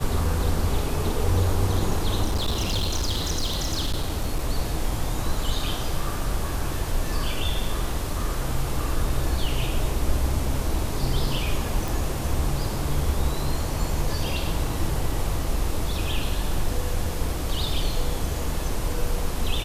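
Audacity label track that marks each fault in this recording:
2.240000	4.470000	clipping −20 dBFS
11.880000	11.880000	click

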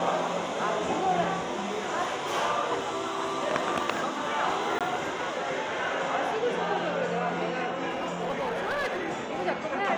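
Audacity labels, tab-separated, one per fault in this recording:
4.790000	4.810000	drop-out 17 ms
7.890000	9.450000	clipping −25.5 dBFS

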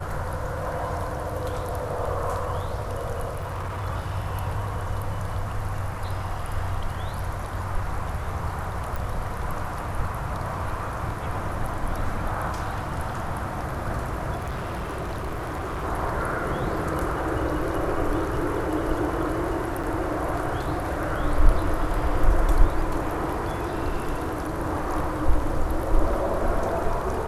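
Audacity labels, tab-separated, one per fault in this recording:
3.330000	3.860000	clipping −27 dBFS
8.960000	8.960000	click
14.360000	15.850000	clipping −26.5 dBFS
19.830000	19.840000	drop-out 5.8 ms

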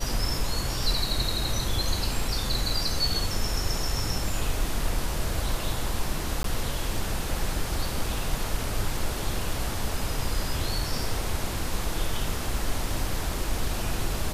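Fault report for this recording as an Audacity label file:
6.430000	6.440000	drop-out 13 ms

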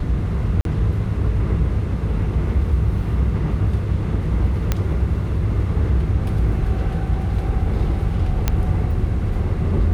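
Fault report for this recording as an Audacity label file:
0.610000	0.650000	drop-out 42 ms
4.720000	4.720000	click −5 dBFS
8.480000	8.480000	click −4 dBFS

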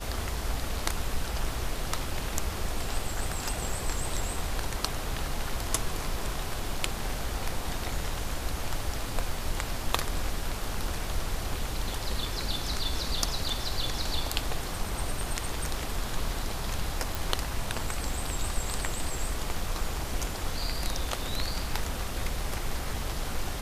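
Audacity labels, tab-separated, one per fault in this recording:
17.150000	17.150000	click

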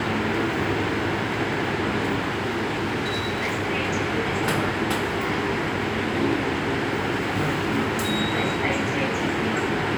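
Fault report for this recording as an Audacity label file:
2.290000	3.680000	clipping −21.5 dBFS

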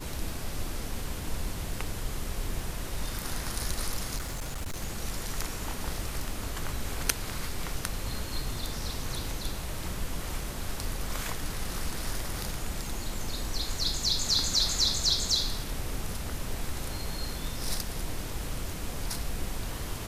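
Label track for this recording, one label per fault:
4.180000	4.830000	clipping −30.5 dBFS

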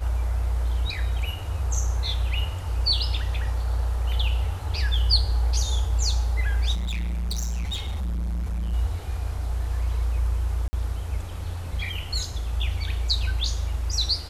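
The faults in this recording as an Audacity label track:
6.740000	8.740000	clipping −25 dBFS
10.680000	10.730000	drop-out 50 ms

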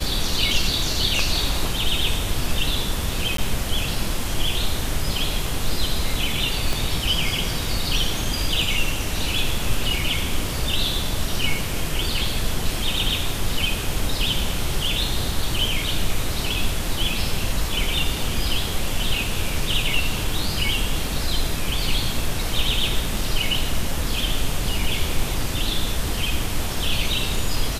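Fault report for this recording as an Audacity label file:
3.370000	3.380000	drop-out 13 ms
6.730000	6.730000	click

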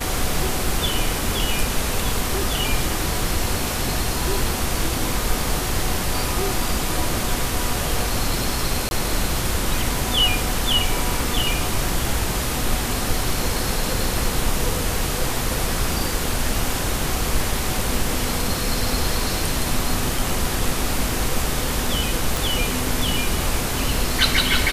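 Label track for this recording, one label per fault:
8.890000	8.910000	drop-out 21 ms
20.180000	20.180000	drop-out 2.1 ms
22.370000	22.370000	click

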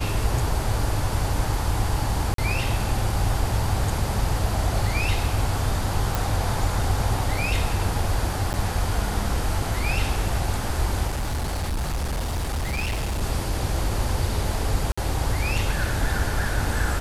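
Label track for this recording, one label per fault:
2.340000	2.380000	drop-out 43 ms
6.150000	6.150000	click
8.530000	8.540000	drop-out 9.7 ms
11.070000	13.220000	clipping −22.5 dBFS
14.920000	14.970000	drop-out 55 ms

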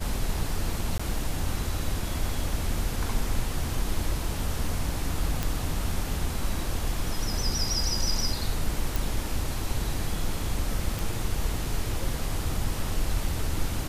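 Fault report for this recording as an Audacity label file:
0.980000	0.990000	drop-out 15 ms
5.430000	5.430000	click
8.960000	8.960000	click
10.990000	10.990000	click

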